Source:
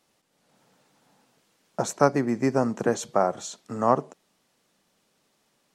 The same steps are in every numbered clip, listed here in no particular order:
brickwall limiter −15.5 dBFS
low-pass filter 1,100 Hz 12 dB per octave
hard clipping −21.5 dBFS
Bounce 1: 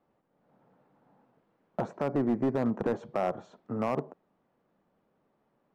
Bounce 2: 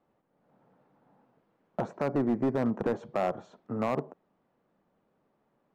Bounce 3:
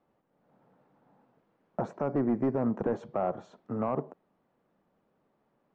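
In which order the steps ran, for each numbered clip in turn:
brickwall limiter, then low-pass filter, then hard clipping
low-pass filter, then brickwall limiter, then hard clipping
brickwall limiter, then hard clipping, then low-pass filter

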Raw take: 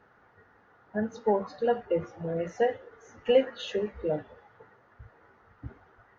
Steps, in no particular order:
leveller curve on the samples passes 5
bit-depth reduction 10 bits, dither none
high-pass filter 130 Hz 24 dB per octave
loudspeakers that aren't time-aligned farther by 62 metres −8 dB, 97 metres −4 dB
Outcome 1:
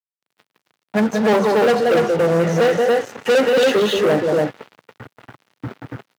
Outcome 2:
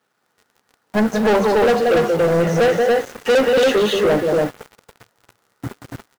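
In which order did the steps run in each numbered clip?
loudspeakers that aren't time-aligned, then leveller curve on the samples, then bit-depth reduction, then high-pass filter
loudspeakers that aren't time-aligned, then bit-depth reduction, then high-pass filter, then leveller curve on the samples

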